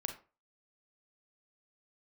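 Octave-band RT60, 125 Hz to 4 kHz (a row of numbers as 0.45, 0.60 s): 0.35, 0.35, 0.35, 0.35, 0.30, 0.20 s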